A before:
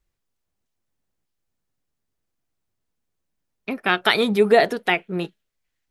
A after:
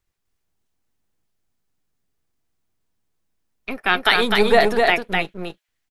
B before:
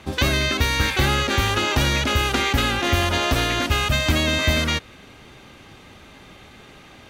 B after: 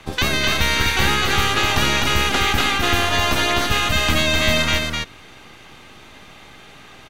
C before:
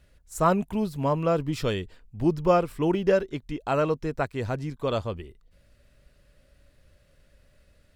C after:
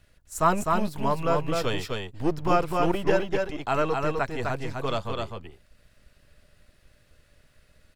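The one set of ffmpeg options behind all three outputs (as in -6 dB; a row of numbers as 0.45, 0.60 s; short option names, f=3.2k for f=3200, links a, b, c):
-filter_complex "[0:a]bandreject=f=550:w=13,acrossover=split=550[a][b];[a]aeval=exprs='max(val(0),0)':c=same[c];[c][b]amix=inputs=2:normalize=0,aecho=1:1:254:0.668,volume=2dB"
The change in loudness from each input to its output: +2.0, +2.5, -0.5 LU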